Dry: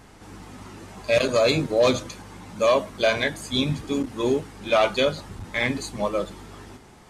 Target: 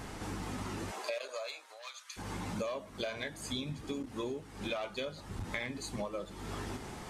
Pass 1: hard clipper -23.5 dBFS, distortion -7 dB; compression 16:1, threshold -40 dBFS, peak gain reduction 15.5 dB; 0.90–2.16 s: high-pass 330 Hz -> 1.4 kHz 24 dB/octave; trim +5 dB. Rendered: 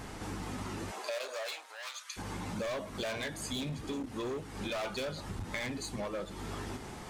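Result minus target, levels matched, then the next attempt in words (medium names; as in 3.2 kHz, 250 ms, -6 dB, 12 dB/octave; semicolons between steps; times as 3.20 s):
hard clipper: distortion +23 dB
hard clipper -12.5 dBFS, distortion -30 dB; compression 16:1, threshold -40 dBFS, peak gain reduction 25 dB; 0.90–2.16 s: high-pass 330 Hz -> 1.4 kHz 24 dB/octave; trim +5 dB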